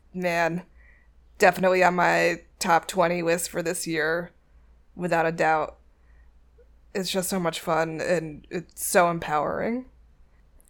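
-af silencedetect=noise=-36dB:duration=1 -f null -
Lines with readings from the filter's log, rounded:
silence_start: 5.70
silence_end: 6.95 | silence_duration: 1.25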